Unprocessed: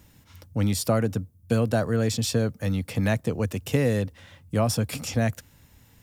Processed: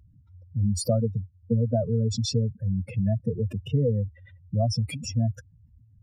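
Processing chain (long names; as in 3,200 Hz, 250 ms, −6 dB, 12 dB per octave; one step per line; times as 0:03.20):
expanding power law on the bin magnitudes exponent 3.4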